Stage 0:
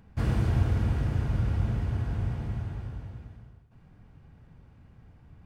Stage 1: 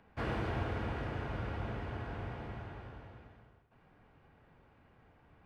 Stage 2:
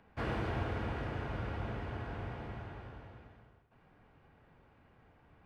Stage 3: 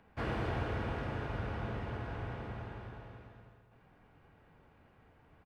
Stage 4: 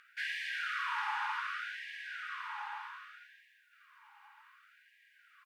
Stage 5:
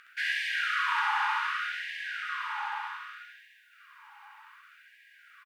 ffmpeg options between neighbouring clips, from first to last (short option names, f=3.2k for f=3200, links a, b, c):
-filter_complex "[0:a]acrossover=split=320 3800:gain=0.178 1 0.158[a][b][c];[a][b][c]amix=inputs=3:normalize=0,volume=1dB"
-af anull
-af "aecho=1:1:208|416|624|832|1040:0.355|0.156|0.0687|0.0302|0.0133"
-af "equalizer=f=500:w=0.63:g=5.5,afftfilt=real='re*gte(b*sr/1024,780*pow(1600/780,0.5+0.5*sin(2*PI*0.65*pts/sr)))':imag='im*gte(b*sr/1024,780*pow(1600/780,0.5+0.5*sin(2*PI*0.65*pts/sr)))':win_size=1024:overlap=0.75,volume=8.5dB"
-af "aecho=1:1:66|132|198:0.631|0.145|0.0334,volume=6dB"